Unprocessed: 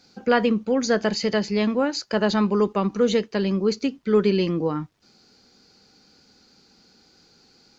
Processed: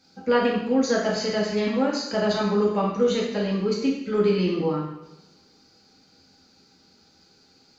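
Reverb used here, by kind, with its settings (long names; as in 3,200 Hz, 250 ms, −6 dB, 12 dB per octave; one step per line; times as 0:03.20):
coupled-rooms reverb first 0.83 s, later 2.1 s, from −23 dB, DRR −4 dB
level −6.5 dB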